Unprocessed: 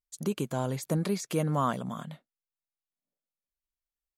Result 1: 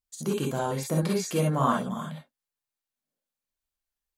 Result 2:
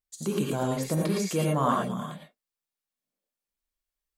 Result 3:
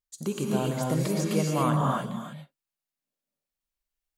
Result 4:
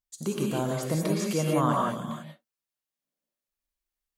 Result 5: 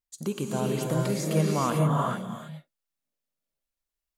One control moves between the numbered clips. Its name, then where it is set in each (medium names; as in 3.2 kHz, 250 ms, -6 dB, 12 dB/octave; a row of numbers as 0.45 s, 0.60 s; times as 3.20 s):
gated-style reverb, gate: 80 ms, 130 ms, 310 ms, 210 ms, 470 ms